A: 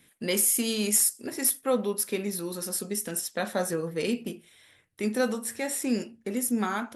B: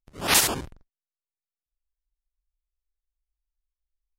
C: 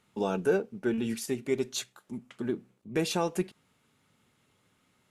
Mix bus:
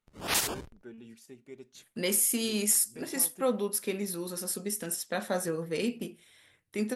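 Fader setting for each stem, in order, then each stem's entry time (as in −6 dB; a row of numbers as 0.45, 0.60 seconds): −2.5, −8.5, −18.5 decibels; 1.75, 0.00, 0.00 seconds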